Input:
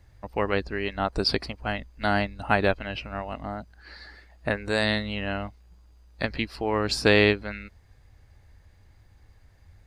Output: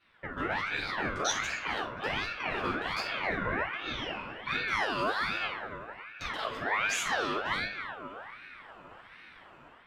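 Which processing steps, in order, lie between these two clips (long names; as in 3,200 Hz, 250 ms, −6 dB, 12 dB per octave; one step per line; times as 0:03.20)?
adaptive Wiener filter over 9 samples
high-pass filter 270 Hz 12 dB per octave
automatic gain control gain up to 10.5 dB
brickwall limiter −24 dBFS, peak gain reduction 22.5 dB
tape delay 266 ms, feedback 75%, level −7 dB, low-pass 1,300 Hz
rectangular room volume 420 cubic metres, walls furnished, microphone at 6.6 metres
ring modulator whose carrier an LFO sweeps 1,400 Hz, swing 45%, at 1.3 Hz
level −4.5 dB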